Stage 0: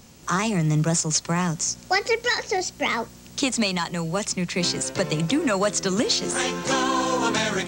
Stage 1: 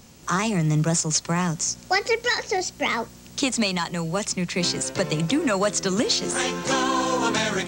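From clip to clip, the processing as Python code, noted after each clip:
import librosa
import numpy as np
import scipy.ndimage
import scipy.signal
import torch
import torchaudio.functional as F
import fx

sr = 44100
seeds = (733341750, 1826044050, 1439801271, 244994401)

y = x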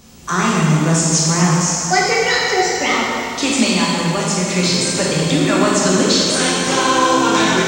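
y = fx.rev_plate(x, sr, seeds[0], rt60_s=2.5, hf_ratio=0.95, predelay_ms=0, drr_db=-5.5)
y = F.gain(torch.from_numpy(y), 2.0).numpy()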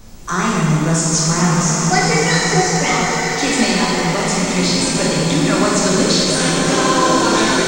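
y = fx.dmg_noise_colour(x, sr, seeds[1], colour='brown', level_db=-37.0)
y = fx.peak_eq(y, sr, hz=2900.0, db=-3.5, octaves=0.4)
y = fx.rev_bloom(y, sr, seeds[2], attack_ms=1360, drr_db=3.5)
y = F.gain(torch.from_numpy(y), -1.0).numpy()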